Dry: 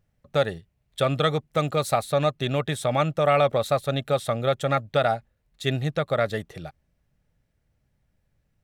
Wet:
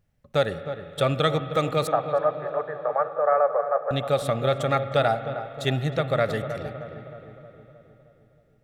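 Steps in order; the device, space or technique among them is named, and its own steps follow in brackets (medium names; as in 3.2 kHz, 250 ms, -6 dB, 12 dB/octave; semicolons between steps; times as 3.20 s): 1.87–3.91 s: Chebyshev band-pass 450–1700 Hz, order 4; dub delay into a spring reverb (filtered feedback delay 312 ms, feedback 61%, low-pass 1.3 kHz, level -9 dB; spring tank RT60 3.5 s, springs 31/53 ms, chirp 70 ms, DRR 11.5 dB)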